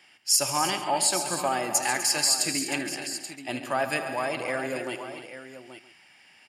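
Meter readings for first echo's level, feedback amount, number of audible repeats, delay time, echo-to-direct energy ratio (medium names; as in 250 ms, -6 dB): -15.5 dB, no regular repeats, 9, 77 ms, -5.0 dB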